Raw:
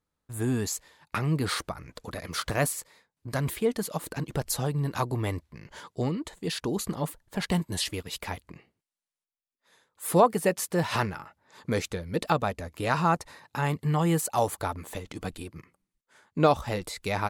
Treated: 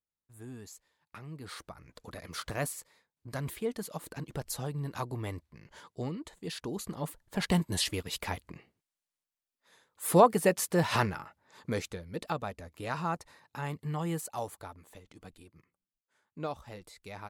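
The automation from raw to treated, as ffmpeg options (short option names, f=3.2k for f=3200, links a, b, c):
-af "volume=-0.5dB,afade=t=in:st=1.38:d=0.69:silence=0.298538,afade=t=in:st=6.91:d=0.58:silence=0.446684,afade=t=out:st=11.07:d=1.02:silence=0.375837,afade=t=out:st=14.13:d=0.62:silence=0.473151"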